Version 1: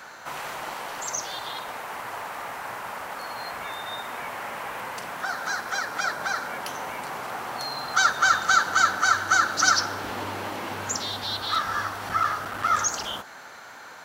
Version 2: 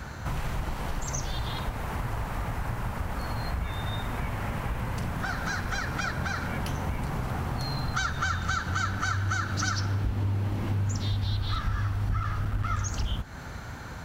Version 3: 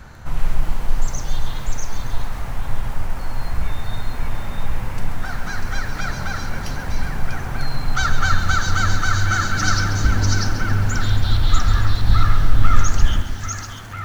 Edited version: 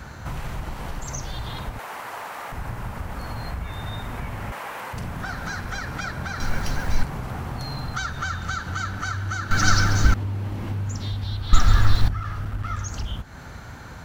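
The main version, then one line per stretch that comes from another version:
2
0:01.79–0:02.52: punch in from 1
0:04.52–0:04.93: punch in from 1
0:06.40–0:07.03: punch in from 3
0:09.51–0:10.14: punch in from 3
0:11.53–0:12.08: punch in from 3

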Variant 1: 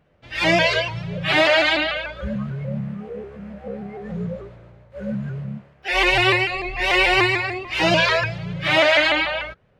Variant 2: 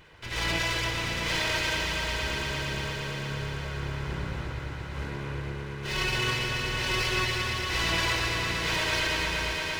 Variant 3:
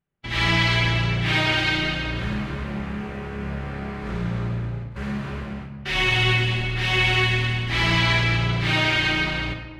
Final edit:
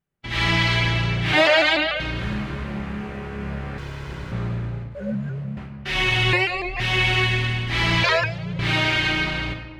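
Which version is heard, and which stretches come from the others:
3
0:01.33–0:02.00: punch in from 1
0:03.78–0:04.32: punch in from 2
0:04.95–0:05.57: punch in from 1
0:06.33–0:06.80: punch in from 1
0:08.04–0:08.59: punch in from 1

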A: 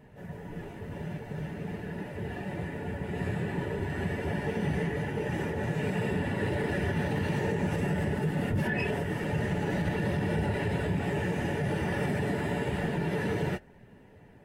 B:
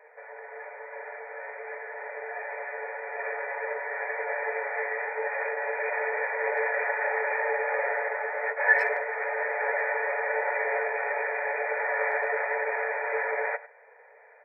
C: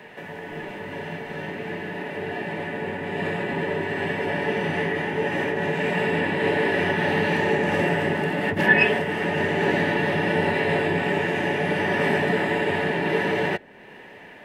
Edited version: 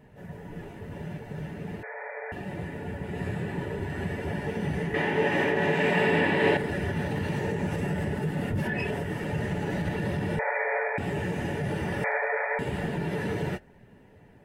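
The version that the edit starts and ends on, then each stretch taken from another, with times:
A
0:01.83–0:02.32: punch in from B
0:04.94–0:06.57: punch in from C
0:10.39–0:10.98: punch in from B
0:12.04–0:12.59: punch in from B

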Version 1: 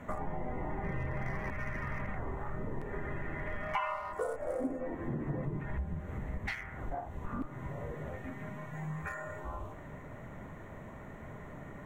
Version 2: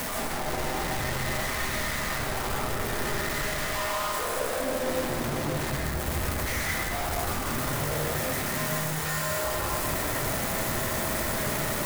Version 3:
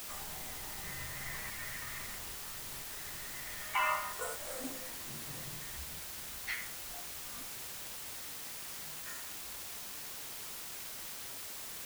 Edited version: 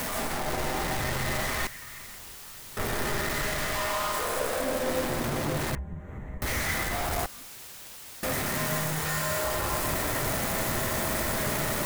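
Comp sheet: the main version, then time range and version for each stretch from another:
2
0:01.67–0:02.77: punch in from 3
0:05.75–0:06.42: punch in from 1
0:07.26–0:08.23: punch in from 3

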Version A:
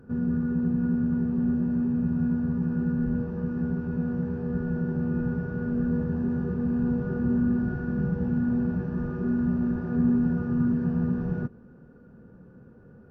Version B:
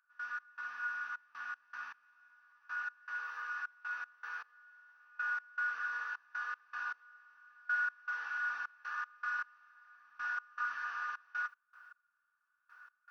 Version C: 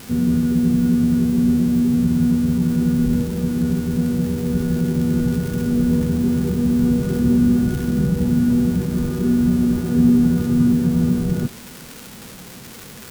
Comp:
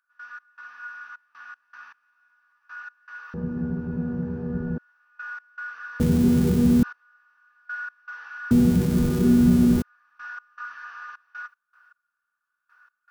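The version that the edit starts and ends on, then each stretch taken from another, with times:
B
0:03.34–0:04.78: punch in from A
0:06.00–0:06.83: punch in from C
0:08.51–0:09.82: punch in from C

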